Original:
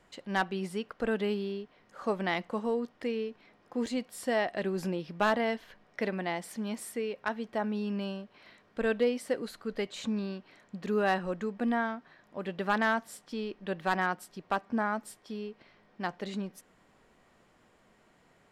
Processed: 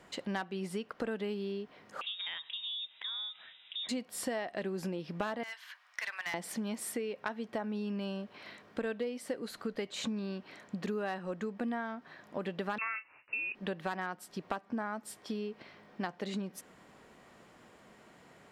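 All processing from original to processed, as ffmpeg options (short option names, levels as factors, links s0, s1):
-filter_complex "[0:a]asettb=1/sr,asplit=3[s0][s1][s2];[s0]atrim=end=2.014[s3];[s1]atrim=start=2.01:end=3.89,asetpts=PTS-STARTPTS,afade=t=in:d=0.004:c=qsin,afade=t=out:st=1.876:d=0.004:c=qsin,lowpass=f=3300:t=q:w=0.5098,lowpass=f=3300:t=q:w=0.6013,lowpass=f=3300:t=q:w=0.9,lowpass=f=3300:t=q:w=2.563,afreqshift=-3900,acompressor=threshold=0.00398:ratio=2.5:attack=3.2:release=140:knee=1:detection=peak,bandreject=f=140.9:t=h:w=4,bandreject=f=281.8:t=h:w=4,bandreject=f=422.7:t=h:w=4,bandreject=f=563.6:t=h:w=4,bandreject=f=704.5:t=h:w=4,bandreject=f=845.4:t=h:w=4,bandreject=f=986.3:t=h:w=4,bandreject=f=1127.2:t=h:w=4,bandreject=f=1268.1:t=h:w=4[s4];[s2]atrim=start=3.886[s5];[s3][s4]acrossfade=d=0.004:c1=hsin:c2=qsin[s6];[s6][s5]acrossfade=d=0.004:c1=qsin:c2=hsin,asettb=1/sr,asplit=3[s7][s8][s9];[s7]atrim=end=5.434[s10];[s8]atrim=start=5.43:end=6.34,asetpts=PTS-STARTPTS,afade=t=in:d=0.004:c=qsin,afade=t=out:st=0.906:d=0.004:c=qsin,highpass=f=1100:w=0.5412,highpass=f=1100:w=1.3066,asoftclip=type=hard:threshold=0.0211[s11];[s9]atrim=start=6.336[s12];[s10][s11]acrossfade=d=0.004:c1=hsin:c2=qsin[s13];[s13][s12]acrossfade=d=0.004:c1=qsin:c2=hsin,asettb=1/sr,asplit=3[s14][s15][s16];[s14]atrim=end=12.784[s17];[s15]atrim=start=12.78:end=13.55,asetpts=PTS-STARTPTS,afade=t=in:d=0.004:c=qsin,afade=t=out:st=0.766:d=0.004:c=qsin,agate=range=0.0224:threshold=0.00224:ratio=3:release=100:detection=peak,asplit=2[s18][s19];[s19]adelay=35,volume=0.211[s20];[s18][s20]amix=inputs=2:normalize=0,atrim=end_sample=33957,lowpass=f=2500:t=q:w=0.5098,lowpass=f=2500:t=q:w=0.6013,lowpass=f=2500:t=q:w=0.9,lowpass=f=2500:t=q:w=2.563,afreqshift=-2900[s21];[s16]atrim=start=13.546[s22];[s17][s21]acrossfade=d=0.004:c1=hsin:c2=qsin[s23];[s23][s22]acrossfade=d=0.004:c1=qsin:c2=hsin,highpass=f=160:p=1,lowshelf=f=220:g=4,acompressor=threshold=0.01:ratio=6,volume=2"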